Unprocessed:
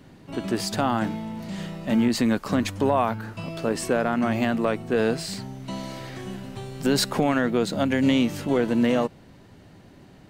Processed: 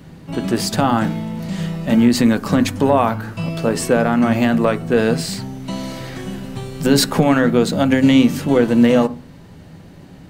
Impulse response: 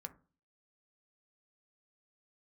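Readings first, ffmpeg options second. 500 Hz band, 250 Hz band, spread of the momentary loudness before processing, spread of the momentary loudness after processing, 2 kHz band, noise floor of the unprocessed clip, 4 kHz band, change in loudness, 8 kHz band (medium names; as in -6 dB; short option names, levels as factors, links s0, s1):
+7.0 dB, +8.5 dB, 13 LU, 15 LU, +6.5 dB, -50 dBFS, +6.5 dB, +8.0 dB, +7.5 dB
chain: -filter_complex "[0:a]asplit=2[s0][s1];[1:a]atrim=start_sample=2205,lowshelf=f=170:g=6,highshelf=f=8200:g=6[s2];[s1][s2]afir=irnorm=-1:irlink=0,volume=2.99[s3];[s0][s3]amix=inputs=2:normalize=0,volume=0.75"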